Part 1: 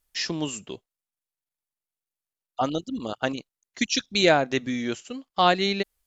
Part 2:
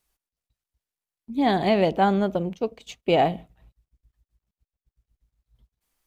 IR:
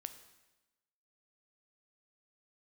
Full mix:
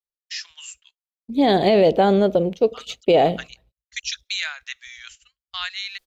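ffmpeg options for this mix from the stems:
-filter_complex "[0:a]highpass=f=1.5k:w=0.5412,highpass=f=1.5k:w=1.3066,adelay=150,volume=-2dB[a];[1:a]equalizer=f=500:t=o:w=1:g=10,equalizer=f=1k:t=o:w=1:g=-4,equalizer=f=4k:t=o:w=1:g=7,volume=2.5dB[b];[a][b]amix=inputs=2:normalize=0,agate=range=-33dB:threshold=-40dB:ratio=3:detection=peak,alimiter=limit=-8dB:level=0:latency=1:release=28"

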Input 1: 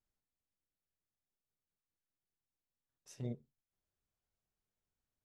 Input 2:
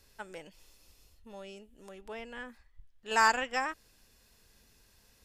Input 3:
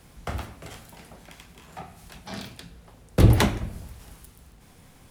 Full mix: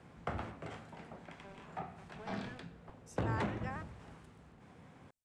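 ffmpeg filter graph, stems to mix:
-filter_complex "[0:a]volume=-7.5dB[a];[1:a]acrusher=bits=6:mix=0:aa=0.000001,adelay=100,volume=-9.5dB[b];[2:a]asoftclip=type=hard:threshold=-20.5dB,highpass=110,volume=-2dB[c];[b][c]amix=inputs=2:normalize=0,lowpass=1.9k,acompressor=threshold=-35dB:ratio=2.5,volume=0dB[d];[a][d]amix=inputs=2:normalize=0,equalizer=f=8.2k:t=o:w=0.9:g=12"

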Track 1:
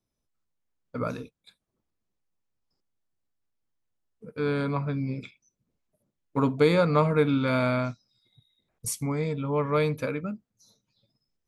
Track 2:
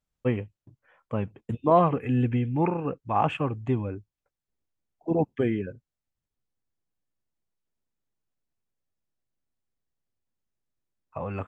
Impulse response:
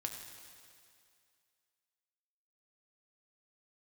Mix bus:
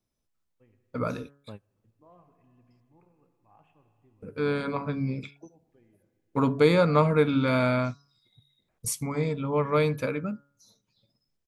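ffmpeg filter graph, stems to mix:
-filter_complex "[0:a]bandreject=f=141.2:t=h:w=4,bandreject=f=282.4:t=h:w=4,bandreject=f=423.6:t=h:w=4,bandreject=f=564.8:t=h:w=4,bandreject=f=706:t=h:w=4,bandreject=f=847.2:t=h:w=4,bandreject=f=988.4:t=h:w=4,bandreject=f=1.1296k:t=h:w=4,bandreject=f=1.2708k:t=h:w=4,bandreject=f=1.412k:t=h:w=4,bandreject=f=1.5532k:t=h:w=4,bandreject=f=1.6944k:t=h:w=4,volume=1dB,asplit=2[a][b];[1:a]adelay=350,volume=-15dB,asplit=2[c][d];[d]volume=-23.5dB[e];[b]apad=whole_len=521264[f];[c][f]sidechaingate=range=-33dB:threshold=-58dB:ratio=16:detection=peak[g];[2:a]atrim=start_sample=2205[h];[e][h]afir=irnorm=-1:irlink=0[i];[a][g][i]amix=inputs=3:normalize=0"

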